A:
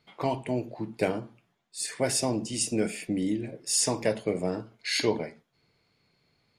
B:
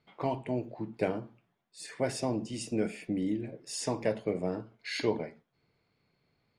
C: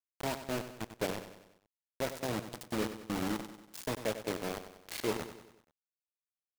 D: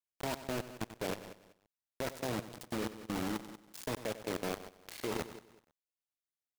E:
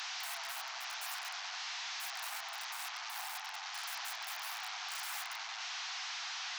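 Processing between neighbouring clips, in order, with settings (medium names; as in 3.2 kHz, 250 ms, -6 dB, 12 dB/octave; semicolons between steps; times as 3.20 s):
low-pass 2.3 kHz 6 dB/octave; trim -3 dB
bit crusher 5-bit; on a send: feedback delay 95 ms, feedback 51%, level -11 dB; on the sum: trim -5 dB
level held to a coarse grid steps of 13 dB; trim +3.5 dB
one-bit delta coder 32 kbps, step -39 dBFS; integer overflow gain 38.5 dB; steep high-pass 710 Hz 96 dB/octave; trim +5 dB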